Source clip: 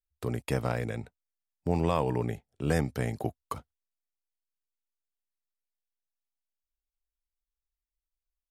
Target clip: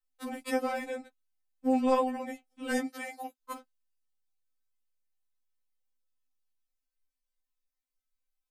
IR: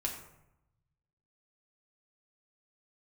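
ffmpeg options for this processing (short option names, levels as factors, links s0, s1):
-filter_complex "[0:a]asplit=3[s0][s1][s2];[s0]afade=t=out:st=2.85:d=0.02[s3];[s1]highpass=f=960:p=1,afade=t=in:st=2.85:d=0.02,afade=t=out:st=3.4:d=0.02[s4];[s2]afade=t=in:st=3.4:d=0.02[s5];[s3][s4][s5]amix=inputs=3:normalize=0,afftfilt=real='re*3.46*eq(mod(b,12),0)':imag='im*3.46*eq(mod(b,12),0)':win_size=2048:overlap=0.75,volume=1.41"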